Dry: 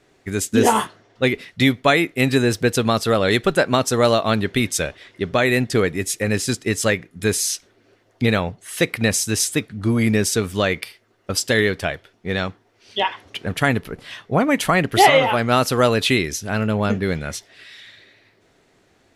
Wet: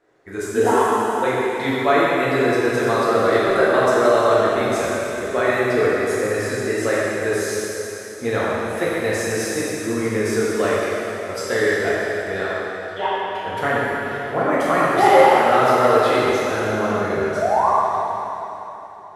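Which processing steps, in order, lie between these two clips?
flat-topped bell 770 Hz +10.5 dB 2.8 octaves
sound drawn into the spectrogram rise, 0:17.36–0:17.70, 580–1,200 Hz −8 dBFS
dense smooth reverb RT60 3.5 s, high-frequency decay 0.95×, DRR −8.5 dB
level −16 dB

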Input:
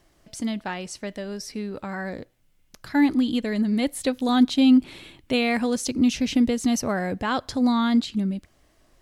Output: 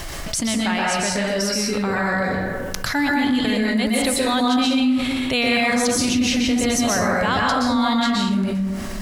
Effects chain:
parametric band 300 Hz −9 dB 2.3 octaves
dense smooth reverb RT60 1 s, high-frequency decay 0.5×, pre-delay 110 ms, DRR −4 dB
envelope flattener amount 70%
level −2 dB

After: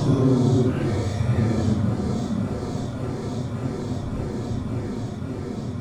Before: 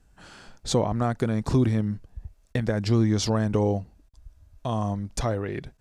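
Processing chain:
echo that builds up and dies away 90 ms, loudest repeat 5, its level −13.5 dB
extreme stretch with random phases 6.3×, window 0.05 s, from 0:01.53
dead-zone distortion −50.5 dBFS

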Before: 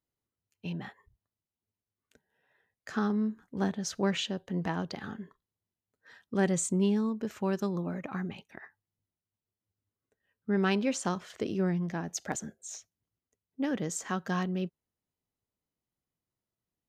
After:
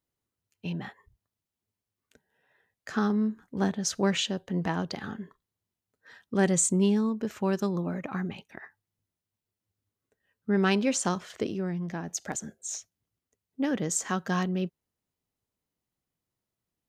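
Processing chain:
dynamic equaliser 8,300 Hz, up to +5 dB, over −50 dBFS, Q 0.72
0:11.46–0:12.68: downward compressor 2 to 1, threshold −36 dBFS, peak gain reduction 6.5 dB
level +3 dB

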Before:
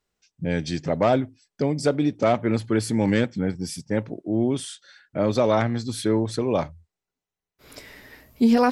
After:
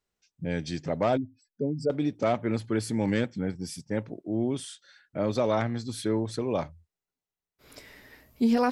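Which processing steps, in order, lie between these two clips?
0:01.17–0:01.90: expanding power law on the bin magnitudes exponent 2.1
level −5.5 dB

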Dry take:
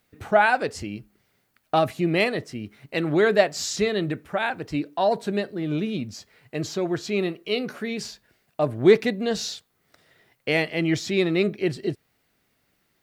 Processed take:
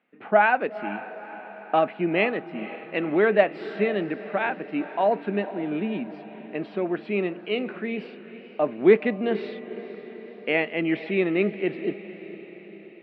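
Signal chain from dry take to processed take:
elliptic band-pass filter 200–2,700 Hz, stop band 40 dB
feedback delay with all-pass diffusion 479 ms, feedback 58%, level −14.5 dB

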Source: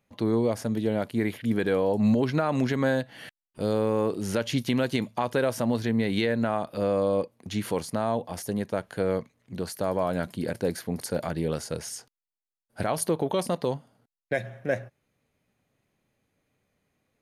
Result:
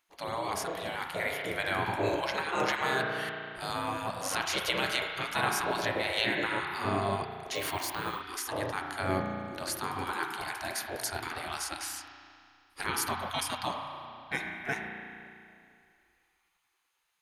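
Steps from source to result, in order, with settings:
spring reverb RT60 2.4 s, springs 34 ms, chirp 65 ms, DRR 2.5 dB
gate on every frequency bin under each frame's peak −15 dB weak
0:07.55–0:08.20: bad sample-rate conversion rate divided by 2×, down filtered, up hold
level +4 dB

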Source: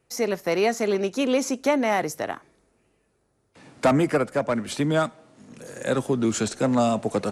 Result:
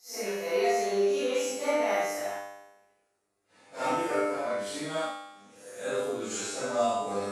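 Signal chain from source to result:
random phases in long frames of 200 ms
bass and treble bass −14 dB, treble +2 dB
tuned comb filter 100 Hz, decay 1 s, harmonics all, mix 90%
level +8 dB

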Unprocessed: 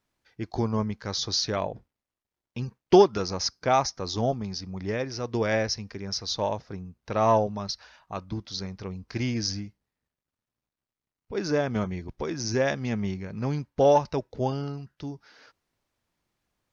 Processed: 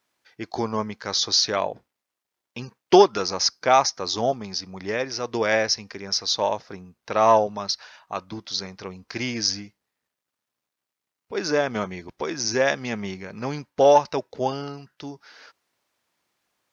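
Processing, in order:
high-pass filter 560 Hz 6 dB per octave
level +7 dB

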